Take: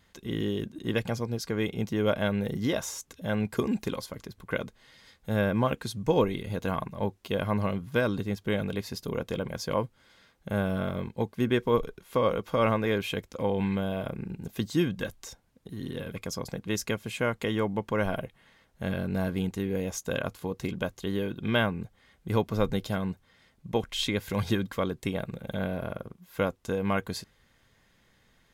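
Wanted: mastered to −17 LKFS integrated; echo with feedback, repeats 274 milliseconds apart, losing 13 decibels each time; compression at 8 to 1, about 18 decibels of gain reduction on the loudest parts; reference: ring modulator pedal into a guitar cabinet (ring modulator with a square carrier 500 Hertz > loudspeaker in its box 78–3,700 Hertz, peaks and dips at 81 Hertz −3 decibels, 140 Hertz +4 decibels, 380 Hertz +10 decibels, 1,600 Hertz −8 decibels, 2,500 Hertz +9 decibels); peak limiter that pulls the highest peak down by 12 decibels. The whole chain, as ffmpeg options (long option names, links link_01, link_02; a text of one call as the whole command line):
ffmpeg -i in.wav -af "acompressor=threshold=-39dB:ratio=8,alimiter=level_in=13.5dB:limit=-24dB:level=0:latency=1,volume=-13.5dB,aecho=1:1:274|548|822:0.224|0.0493|0.0108,aeval=exprs='val(0)*sgn(sin(2*PI*500*n/s))':channel_layout=same,highpass=78,equalizer=frequency=81:width_type=q:width=4:gain=-3,equalizer=frequency=140:width_type=q:width=4:gain=4,equalizer=frequency=380:width_type=q:width=4:gain=10,equalizer=frequency=1600:width_type=q:width=4:gain=-8,equalizer=frequency=2500:width_type=q:width=4:gain=9,lowpass=frequency=3700:width=0.5412,lowpass=frequency=3700:width=1.3066,volume=28.5dB" out.wav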